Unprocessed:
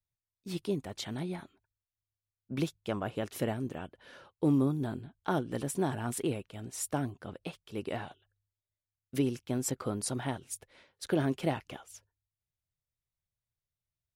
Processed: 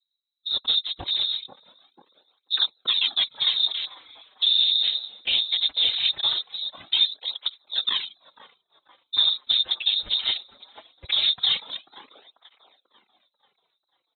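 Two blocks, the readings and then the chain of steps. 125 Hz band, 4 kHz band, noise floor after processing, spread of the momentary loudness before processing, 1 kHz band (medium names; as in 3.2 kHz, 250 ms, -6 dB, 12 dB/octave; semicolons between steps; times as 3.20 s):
under -15 dB, +29.0 dB, -81 dBFS, 14 LU, -3.5 dB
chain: local Wiener filter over 41 samples; comb 3.9 ms, depth 39%; in parallel at -9 dB: crossover distortion -49.5 dBFS; on the sum: frequency inversion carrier 3.9 kHz; on a send: feedback echo behind a band-pass 491 ms, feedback 44%, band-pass 590 Hz, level -8 dB; on the sum: whisper effect; loudness maximiser +21.5 dB; cancelling through-zero flanger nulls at 0.2 Hz, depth 7.9 ms; trim -8.5 dB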